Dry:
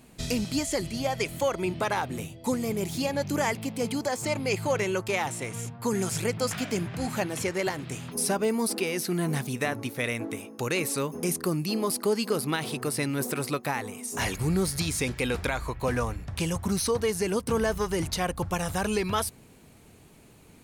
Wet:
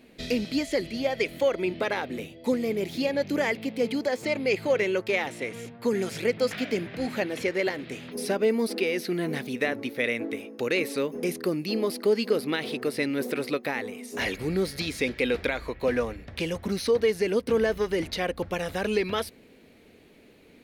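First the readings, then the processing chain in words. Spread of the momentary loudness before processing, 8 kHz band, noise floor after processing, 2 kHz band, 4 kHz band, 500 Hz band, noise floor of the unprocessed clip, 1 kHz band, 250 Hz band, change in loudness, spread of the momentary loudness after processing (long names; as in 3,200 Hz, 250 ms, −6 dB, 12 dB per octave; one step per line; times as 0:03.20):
5 LU, −10.5 dB, −55 dBFS, +2.5 dB, 0.0 dB, +3.5 dB, −53 dBFS, −4.0 dB, +0.5 dB, +1.0 dB, 7 LU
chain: octave-band graphic EQ 125/250/500/1,000/2,000/4,000/8,000 Hz −6/+7/+10/−4/+9/+7/−8 dB
level −6 dB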